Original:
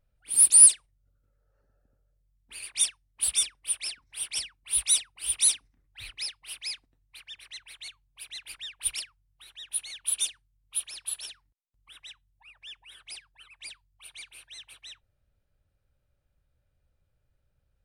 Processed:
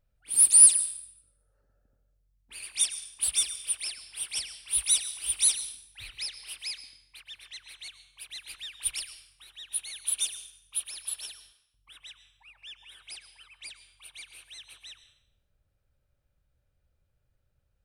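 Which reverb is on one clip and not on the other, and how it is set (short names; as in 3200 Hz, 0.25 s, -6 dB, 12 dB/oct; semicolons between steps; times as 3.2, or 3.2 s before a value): plate-style reverb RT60 0.71 s, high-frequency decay 0.95×, pre-delay 95 ms, DRR 11.5 dB; gain -1 dB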